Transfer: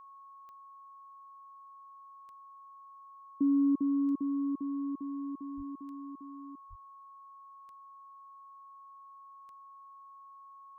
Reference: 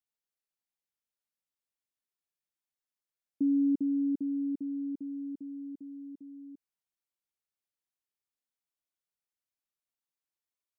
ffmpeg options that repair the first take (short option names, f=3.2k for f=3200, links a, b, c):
-filter_complex "[0:a]adeclick=t=4,bandreject=f=1.1k:w=30,asplit=3[a][b][c];[a]afade=t=out:st=5.56:d=0.02[d];[b]highpass=f=140:w=0.5412,highpass=f=140:w=1.3066,afade=t=in:st=5.56:d=0.02,afade=t=out:st=5.68:d=0.02[e];[c]afade=t=in:st=5.68:d=0.02[f];[d][e][f]amix=inputs=3:normalize=0,asplit=3[g][h][i];[g]afade=t=out:st=6.69:d=0.02[j];[h]highpass=f=140:w=0.5412,highpass=f=140:w=1.3066,afade=t=in:st=6.69:d=0.02,afade=t=out:st=6.81:d=0.02[k];[i]afade=t=in:st=6.81:d=0.02[l];[j][k][l]amix=inputs=3:normalize=0"